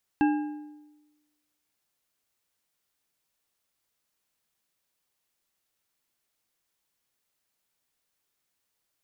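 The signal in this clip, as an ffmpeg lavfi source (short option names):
-f lavfi -i "aevalsrc='0.126*pow(10,-3*t/1.14)*sin(2*PI*299*t)+0.0596*pow(10,-3*t/0.841)*sin(2*PI*824.3*t)+0.0282*pow(10,-3*t/0.687)*sin(2*PI*1615.8*t)+0.0133*pow(10,-3*t/0.591)*sin(2*PI*2671*t)':d=1.55:s=44100"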